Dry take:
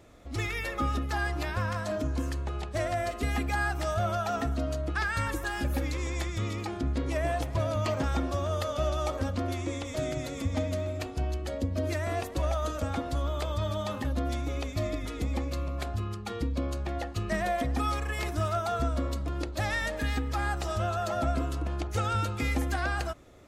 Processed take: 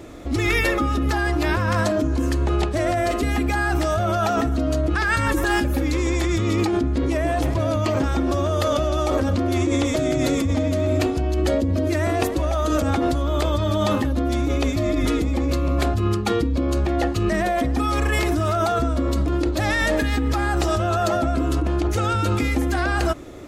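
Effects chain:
parametric band 320 Hz +8.5 dB 0.62 octaves
in parallel at +3 dB: compressor whose output falls as the input rises −32 dBFS, ratio −0.5
on the sum: level +3 dB

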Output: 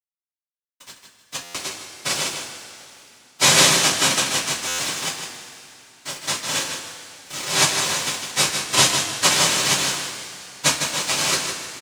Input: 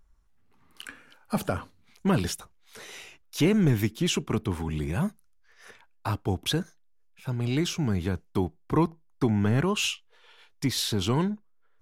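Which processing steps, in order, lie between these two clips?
three sine waves on the formant tracks
cochlear-implant simulation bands 1
dead-zone distortion −42 dBFS
on a send: repeating echo 155 ms, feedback 25%, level −7 dB
on the sum: coupled-rooms reverb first 0.22 s, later 3 s, from −18 dB, DRR −5 dB
buffer that repeats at 0:01.43/0:04.67, samples 512, times 9
level −1 dB

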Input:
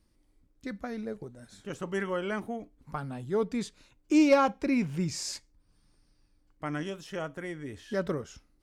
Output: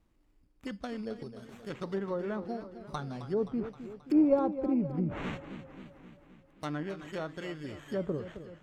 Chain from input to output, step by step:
sample-rate reduction 4,900 Hz, jitter 0%
treble cut that deepens with the level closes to 650 Hz, closed at −26 dBFS
feedback echo with a swinging delay time 264 ms, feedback 60%, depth 101 cents, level −12 dB
level −1.5 dB

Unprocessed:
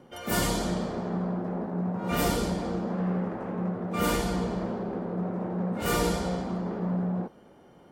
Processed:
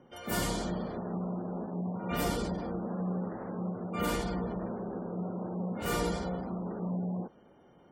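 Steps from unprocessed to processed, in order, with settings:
gate on every frequency bin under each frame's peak −30 dB strong
level −5 dB

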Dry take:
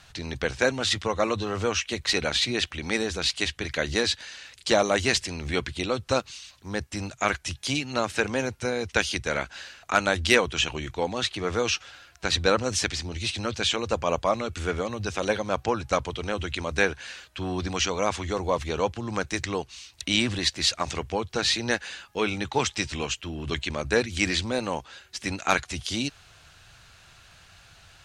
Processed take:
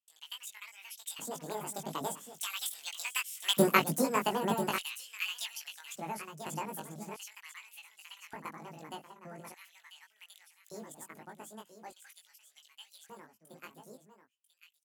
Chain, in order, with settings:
source passing by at 0:06.65, 8 m/s, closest 2 metres
parametric band 2,400 Hz −14.5 dB 1.2 octaves
in parallel at −1 dB: downward compressor, threshold −50 dBFS, peak gain reduction 22.5 dB
on the sum: transient designer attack +4 dB, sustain −1 dB
automatic gain control gain up to 4 dB
change of speed 1.89×
noise gate with hold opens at −53 dBFS
single-tap delay 992 ms −10.5 dB
auto-filter high-pass square 0.42 Hz 210–3,000 Hz
double-tracking delay 19 ms −3 dB
level +1.5 dB

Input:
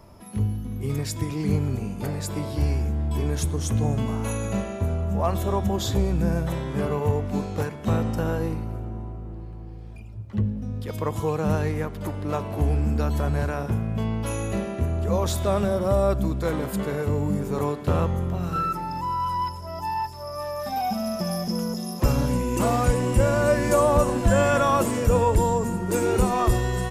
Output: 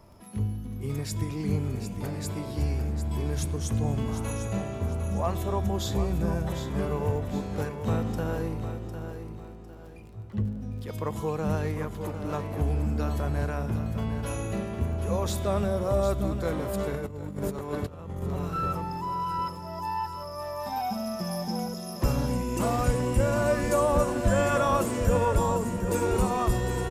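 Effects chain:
surface crackle 24 per second −40 dBFS
on a send: repeating echo 753 ms, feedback 34%, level −9 dB
0:16.94–0:18.22: on the sum: compressor whose output falls as the input rises −28 dBFS, ratio −0.5
level −4.5 dB

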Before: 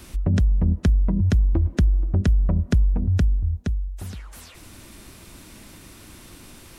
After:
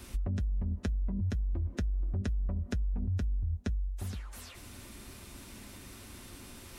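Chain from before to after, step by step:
reversed playback
upward compression, threshold −40 dBFS
reversed playback
brickwall limiter −18 dBFS, peak gain reduction 7.5 dB
downward compressor, threshold −25 dBFS, peak gain reduction 5.5 dB
notch comb filter 160 Hz
level −3.5 dB

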